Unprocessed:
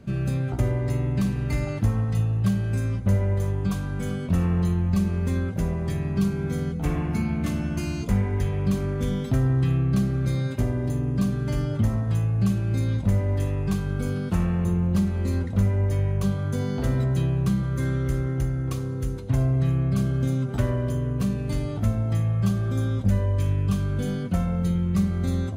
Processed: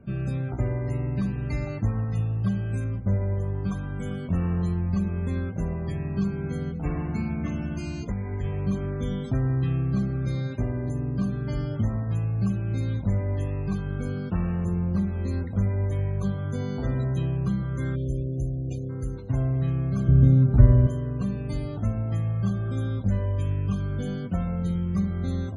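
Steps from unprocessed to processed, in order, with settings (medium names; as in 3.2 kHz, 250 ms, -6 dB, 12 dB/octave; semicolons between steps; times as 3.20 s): loudest bins only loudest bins 64; 2.84–3.55 s: treble shelf 2.5 kHz -10.5 dB; 7.73–8.44 s: compression 3:1, threshold -24 dBFS, peak gain reduction 6.5 dB; 17.95–18.90 s: spectral selection erased 750–2200 Hz; 20.08–20.87 s: RIAA curve playback; trim -3 dB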